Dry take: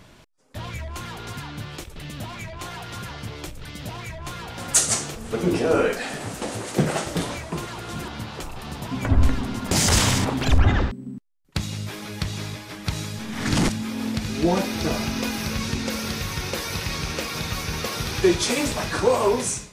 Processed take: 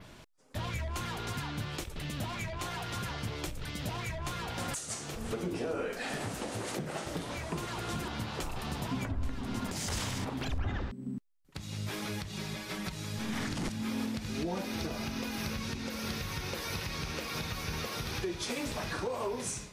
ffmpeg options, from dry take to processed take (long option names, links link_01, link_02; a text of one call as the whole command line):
ffmpeg -i in.wav -filter_complex "[0:a]asettb=1/sr,asplit=3[link_01][link_02][link_03];[link_01]atrim=end=12.294[link_04];[link_02]atrim=start=12.29:end=12.96,asetpts=PTS-STARTPTS,afade=type=in:duration=0.004:curve=qsin,afade=type=out:start_time=0.666:duration=0.004:curve=qsin,aecho=1:1:5.3:0.65,atrim=end_sample=29547[link_05];[link_03]atrim=start=12.956[link_06];[link_04][link_05]acrossfade=duration=0.004:curve1=hsin:curve2=qsin[link_07];[link_07][link_06]acrossfade=duration=0.004:curve1=qsin:curve2=hsin,adynamicequalizer=threshold=0.00708:dfrequency=7800:dqfactor=1.4:tfrequency=7800:tqfactor=1.4:attack=5:release=100:ratio=0.375:range=2:mode=cutabove:tftype=bell,acompressor=threshold=-29dB:ratio=2.5,alimiter=limit=-23dB:level=0:latency=1:release=363,volume=-2dB" out.wav